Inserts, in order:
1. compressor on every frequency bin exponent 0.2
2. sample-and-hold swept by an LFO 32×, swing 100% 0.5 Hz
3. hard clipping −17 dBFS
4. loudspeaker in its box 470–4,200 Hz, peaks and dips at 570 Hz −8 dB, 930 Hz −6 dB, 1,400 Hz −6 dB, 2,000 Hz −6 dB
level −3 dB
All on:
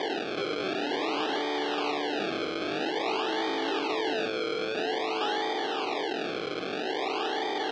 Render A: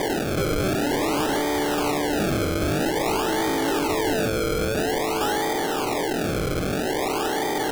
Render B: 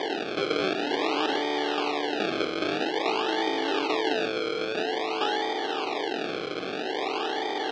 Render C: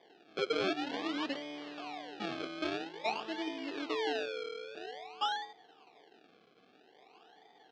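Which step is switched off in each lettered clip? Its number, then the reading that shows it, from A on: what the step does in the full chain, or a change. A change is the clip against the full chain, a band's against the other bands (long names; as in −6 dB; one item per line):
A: 4, 125 Hz band +16.0 dB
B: 3, distortion level −11 dB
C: 1, 250 Hz band +2.0 dB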